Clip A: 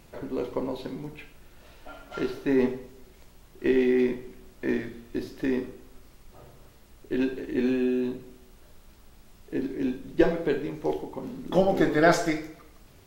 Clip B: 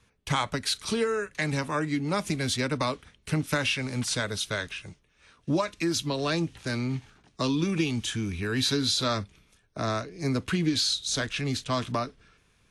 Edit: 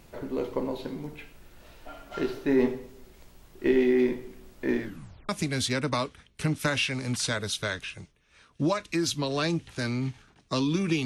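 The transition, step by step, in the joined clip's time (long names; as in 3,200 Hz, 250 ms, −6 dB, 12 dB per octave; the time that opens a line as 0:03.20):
clip A
0:04.84: tape stop 0.45 s
0:05.29: continue with clip B from 0:02.17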